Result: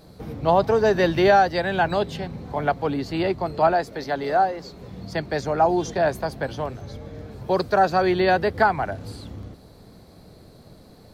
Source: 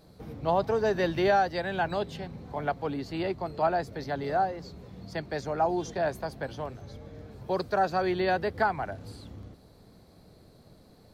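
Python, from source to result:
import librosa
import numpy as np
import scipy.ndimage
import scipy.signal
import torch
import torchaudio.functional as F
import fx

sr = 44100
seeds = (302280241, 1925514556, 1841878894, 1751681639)

y = fx.peak_eq(x, sr, hz=94.0, db=-11.5, octaves=1.8, at=(3.73, 4.81))
y = y * 10.0 ** (7.5 / 20.0)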